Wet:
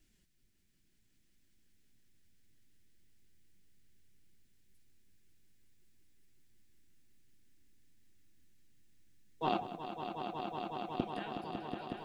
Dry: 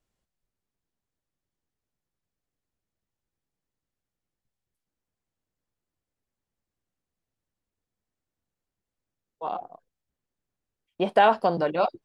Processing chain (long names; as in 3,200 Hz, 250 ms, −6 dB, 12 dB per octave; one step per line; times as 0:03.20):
flat-topped bell 790 Hz −14.5 dB
gate with flip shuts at −28 dBFS, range −30 dB
flanger 0.66 Hz, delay 2.8 ms, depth 9.8 ms, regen +48%
on a send: echo that builds up and dies away 184 ms, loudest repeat 5, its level −8 dB
on the sum: level +14 dB